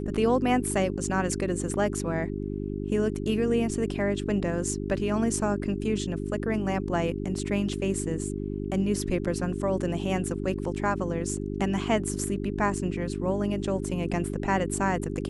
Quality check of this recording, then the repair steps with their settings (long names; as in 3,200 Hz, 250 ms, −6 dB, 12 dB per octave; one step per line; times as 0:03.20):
mains hum 50 Hz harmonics 8 −32 dBFS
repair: hum removal 50 Hz, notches 8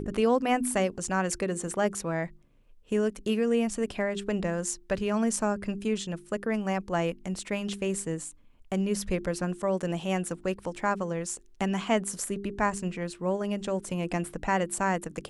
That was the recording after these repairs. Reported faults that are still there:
none of them is left